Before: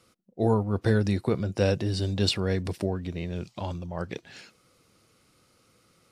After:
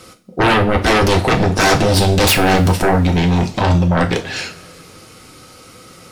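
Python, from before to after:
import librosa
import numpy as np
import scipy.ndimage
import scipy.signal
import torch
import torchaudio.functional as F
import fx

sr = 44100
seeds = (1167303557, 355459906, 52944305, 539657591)

y = fx.fold_sine(x, sr, drive_db=17, ceiling_db=-10.5)
y = fx.rev_double_slope(y, sr, seeds[0], early_s=0.28, late_s=2.3, knee_db=-22, drr_db=2.5)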